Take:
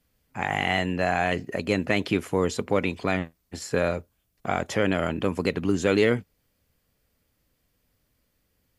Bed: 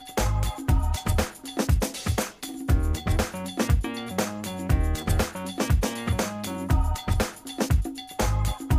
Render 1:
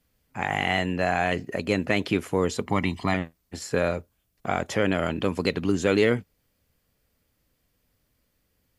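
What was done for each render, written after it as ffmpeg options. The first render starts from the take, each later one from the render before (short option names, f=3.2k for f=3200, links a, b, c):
-filter_complex "[0:a]asettb=1/sr,asplit=3[a][b][c];[a]atrim=end=2.664[d];[b]atrim=start=2.66:end=3.14,asetpts=PTS-STARTPTS,afade=t=in:d=0.004:c=qsin,afade=t=out:st=0.476:d=0.004:c=qsin,aecho=1:1:1:0.74,atrim=end_sample=21168[e];[c]atrim=start=3.136[f];[d][e]acrossfade=d=0.004:c1=hsin:c2=qsin[g];[g][f]acrossfade=d=0.004:c1=qsin:c2=hsin,asettb=1/sr,asplit=3[h][i][j];[h]atrim=end=5.054[k];[i]atrim=start=5.05:end=5.72,asetpts=PTS-STARTPTS,afade=t=in:d=0.004:c=qsin,afade=t=out:st=0.666:d=0.004:c=qsin,equalizer=f=4.1k:w=1.5:g=5[l];[j]atrim=start=5.716[m];[k][l]acrossfade=d=0.004:c1=hsin:c2=qsin[n];[n][m]acrossfade=d=0.004:c1=qsin:c2=hsin"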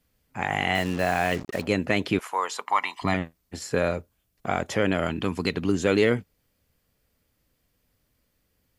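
-filter_complex "[0:a]asettb=1/sr,asplit=3[a][b][c];[a]atrim=end=0.754[d];[b]atrim=start=0.75:end=1.67,asetpts=PTS-STARTPTS,afade=t=in:d=0.004:c=qsin,afade=t=out:st=0.916:d=0.004:c=qsin,acrusher=bits=5:mix=0:aa=0.5[e];[c]atrim=start=1.666[f];[d][e]acrossfade=d=0.004:c1=hsin:c2=qsin[g];[g][f]acrossfade=d=0.004:c1=qsin:c2=hsin,asettb=1/sr,asplit=3[h][i][j];[h]atrim=end=2.194[k];[i]atrim=start=2.19:end=3.02,asetpts=PTS-STARTPTS,afade=t=in:d=0.004:c=qsin,afade=t=out:st=0.826:d=0.004:c=qsin,highpass=f=960:t=q:w=2.7[l];[j]atrim=start=3.016[m];[k][l]acrossfade=d=0.004:c1=hsin:c2=qsin[n];[n][m]acrossfade=d=0.004:c1=qsin:c2=hsin,asettb=1/sr,asplit=3[o][p][q];[o]atrim=end=5.084[r];[p]atrim=start=5.08:end=5.54,asetpts=PTS-STARTPTS,afade=t=in:d=0.004:c=qsin,afade=t=out:st=0.456:d=0.004:c=qsin,equalizer=f=550:t=o:w=0.46:g=-9.5[s];[q]atrim=start=5.536[t];[r][s]acrossfade=d=0.004:c1=hsin:c2=qsin[u];[u][t]acrossfade=d=0.004:c1=qsin:c2=hsin"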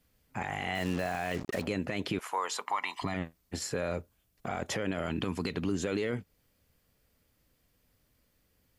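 -af "acompressor=threshold=-26dB:ratio=3,alimiter=limit=-21.5dB:level=0:latency=1:release=14"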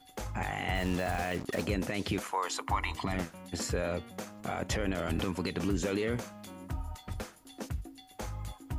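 -filter_complex "[1:a]volume=-15dB[a];[0:a][a]amix=inputs=2:normalize=0"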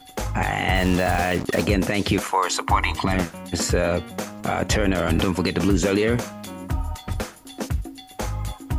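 -af "volume=11.5dB"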